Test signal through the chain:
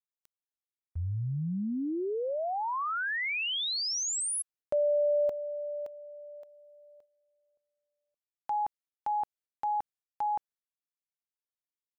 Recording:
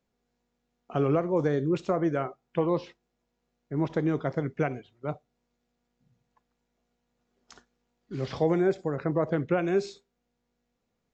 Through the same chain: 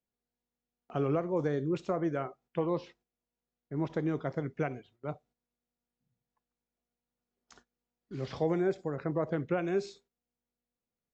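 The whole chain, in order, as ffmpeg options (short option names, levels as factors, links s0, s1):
-af "agate=range=0.355:threshold=0.00158:ratio=16:detection=peak,volume=0.562"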